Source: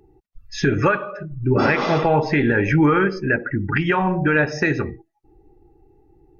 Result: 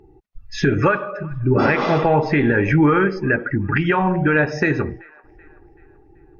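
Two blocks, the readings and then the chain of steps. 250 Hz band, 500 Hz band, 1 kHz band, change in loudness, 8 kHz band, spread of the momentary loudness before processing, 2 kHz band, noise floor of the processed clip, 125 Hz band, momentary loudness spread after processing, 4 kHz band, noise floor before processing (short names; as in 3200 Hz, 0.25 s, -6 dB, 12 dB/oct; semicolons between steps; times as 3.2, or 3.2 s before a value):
+1.5 dB, +1.5 dB, +1.0 dB, +1.0 dB, n/a, 9 LU, +0.5 dB, -51 dBFS, +1.5 dB, 8 LU, -1.0 dB, -65 dBFS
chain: high shelf 5200 Hz -10 dB; in parallel at -3 dB: compressor, threshold -28 dBFS, peak gain reduction 15 dB; on the sum: band-limited delay 0.382 s, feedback 44%, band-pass 1300 Hz, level -23 dB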